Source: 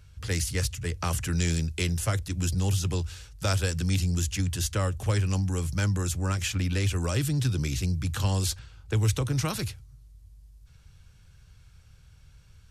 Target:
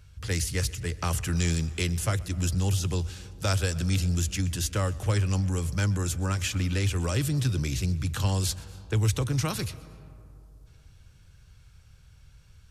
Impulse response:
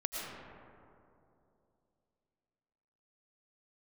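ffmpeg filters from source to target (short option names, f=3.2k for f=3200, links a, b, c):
-filter_complex "[0:a]asplit=2[a][b];[1:a]atrim=start_sample=2205,adelay=127[c];[b][c]afir=irnorm=-1:irlink=0,volume=-21dB[d];[a][d]amix=inputs=2:normalize=0"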